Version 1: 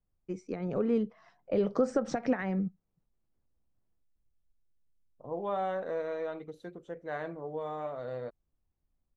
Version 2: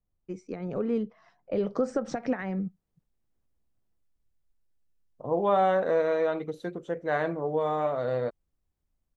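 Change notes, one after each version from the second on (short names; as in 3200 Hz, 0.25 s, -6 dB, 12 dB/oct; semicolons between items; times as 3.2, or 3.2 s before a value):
second voice +9.5 dB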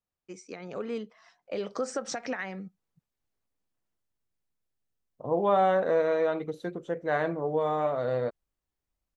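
first voice: add tilt +4 dB/oct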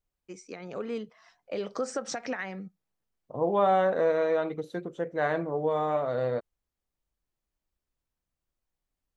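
second voice: entry -1.90 s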